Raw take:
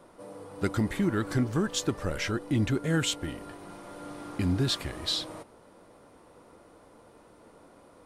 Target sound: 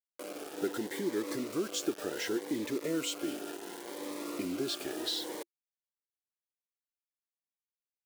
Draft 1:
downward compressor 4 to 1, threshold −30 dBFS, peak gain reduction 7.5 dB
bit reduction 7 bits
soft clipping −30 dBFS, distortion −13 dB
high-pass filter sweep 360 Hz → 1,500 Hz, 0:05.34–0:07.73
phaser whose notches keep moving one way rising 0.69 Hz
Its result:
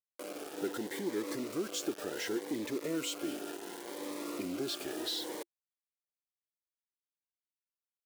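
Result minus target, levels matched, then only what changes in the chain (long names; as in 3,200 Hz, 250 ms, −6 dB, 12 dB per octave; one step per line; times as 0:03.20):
soft clipping: distortion +9 dB
change: soft clipping −23.5 dBFS, distortion −22 dB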